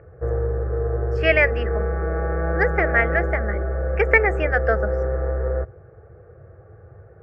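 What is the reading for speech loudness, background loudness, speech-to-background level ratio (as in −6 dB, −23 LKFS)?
−21.0 LKFS, −25.0 LKFS, 4.0 dB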